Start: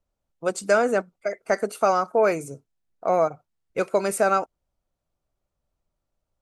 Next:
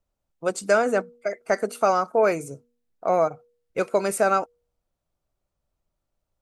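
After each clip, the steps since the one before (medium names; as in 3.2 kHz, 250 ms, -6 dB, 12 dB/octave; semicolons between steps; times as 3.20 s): de-hum 239.4 Hz, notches 2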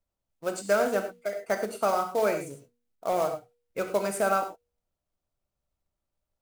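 short-mantissa float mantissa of 2-bit; reverberation, pre-delay 3 ms, DRR 5 dB; trim -6 dB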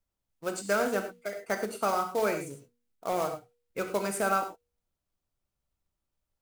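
peaking EQ 620 Hz -5.5 dB 0.58 oct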